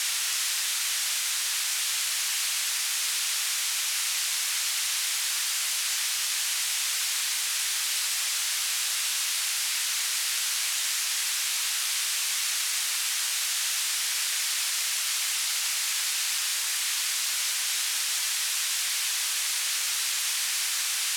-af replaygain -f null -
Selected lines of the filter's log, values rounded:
track_gain = +10.7 dB
track_peak = 0.133